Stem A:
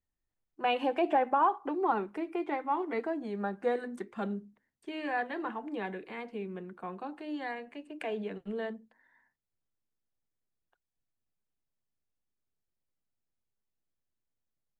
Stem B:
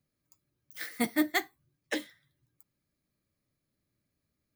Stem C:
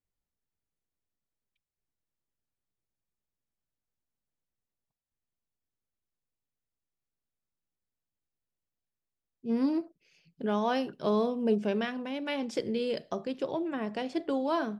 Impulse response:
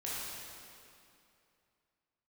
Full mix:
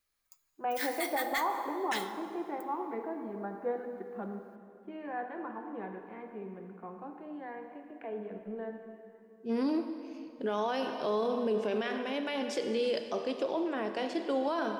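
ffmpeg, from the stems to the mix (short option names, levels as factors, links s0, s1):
-filter_complex "[0:a]lowpass=1400,volume=0.447,asplit=2[s0][s1];[s1]volume=0.596[s2];[1:a]highpass=f=860:w=0.5412,highpass=f=860:w=1.3066,acontrast=56,asoftclip=type=tanh:threshold=0.126,volume=0.75,asplit=2[s3][s4];[s4]volume=0.158[s5];[2:a]highpass=310,volume=1.12,asplit=2[s6][s7];[s7]volume=0.376[s8];[3:a]atrim=start_sample=2205[s9];[s2][s5][s8]amix=inputs=3:normalize=0[s10];[s10][s9]afir=irnorm=-1:irlink=0[s11];[s0][s3][s6][s11]amix=inputs=4:normalize=0,alimiter=limit=0.0708:level=0:latency=1:release=12"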